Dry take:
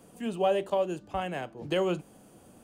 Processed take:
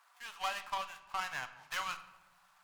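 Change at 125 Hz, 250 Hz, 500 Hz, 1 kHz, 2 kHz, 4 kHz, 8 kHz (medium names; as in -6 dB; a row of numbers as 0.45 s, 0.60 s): -23.0 dB, -29.5 dB, -24.5 dB, -4.5 dB, +1.5 dB, -1.5 dB, +3.0 dB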